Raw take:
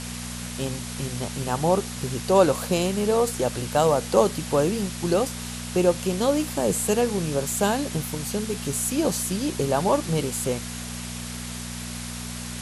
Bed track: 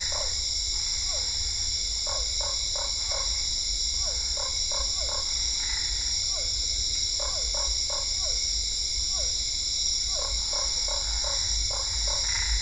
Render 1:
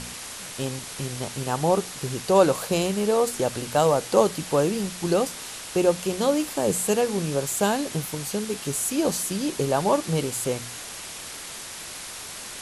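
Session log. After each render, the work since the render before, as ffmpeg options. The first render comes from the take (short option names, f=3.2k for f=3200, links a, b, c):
-af "bandreject=f=60:t=h:w=4,bandreject=f=120:t=h:w=4,bandreject=f=180:t=h:w=4,bandreject=f=240:t=h:w=4"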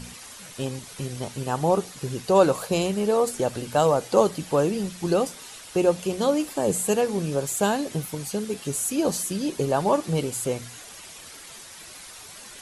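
-af "afftdn=nr=9:nf=-38"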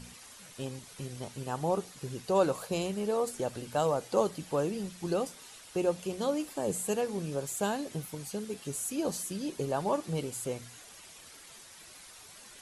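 -af "volume=-8.5dB"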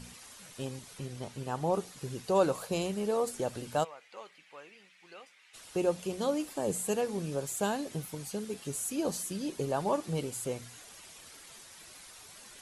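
-filter_complex "[0:a]asettb=1/sr,asplit=3[a][b][c];[a]atrim=end=0.984[d];[b]atrim=start=0.98:end=1.74,asetpts=PTS-STARTPTS,afade=t=in:d=0.004:c=qsin,afade=t=out:st=0.756:d=0.004:c=qsin,highshelf=f=6.4k:g=-6[e];[c]atrim=start=1.736[f];[d][e]acrossfade=d=0.004:c1=hsin:c2=qsin[g];[g][f]acrossfade=d=0.004:c1=qsin:c2=hsin,asplit=3[h][i][j];[h]afade=t=out:st=3.83:d=0.02[k];[i]bandpass=f=2.2k:t=q:w=3.1,afade=t=in:st=3.83:d=0.02,afade=t=out:st=5.53:d=0.02[l];[j]afade=t=in:st=5.53:d=0.02[m];[k][l][m]amix=inputs=3:normalize=0"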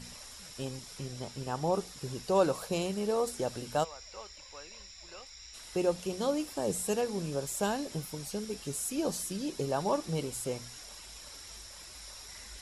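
-filter_complex "[1:a]volume=-23dB[a];[0:a][a]amix=inputs=2:normalize=0"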